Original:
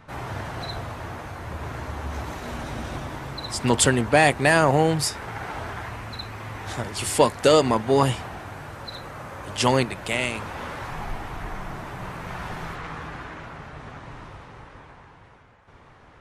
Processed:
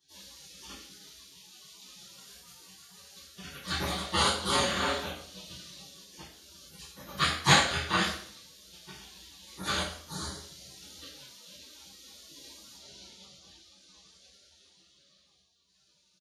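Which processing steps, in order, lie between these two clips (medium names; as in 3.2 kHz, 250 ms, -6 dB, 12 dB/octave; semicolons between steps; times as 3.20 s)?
rattle on loud lows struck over -23 dBFS, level -25 dBFS; high-pass 150 Hz 6 dB/octave; bass shelf 420 Hz -12 dB; echo from a far wall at 260 m, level -24 dB; spectral gate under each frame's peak -25 dB weak; reverberation RT60 0.55 s, pre-delay 3 ms, DRR -11 dB; upward expansion 2.5:1, over -20 dBFS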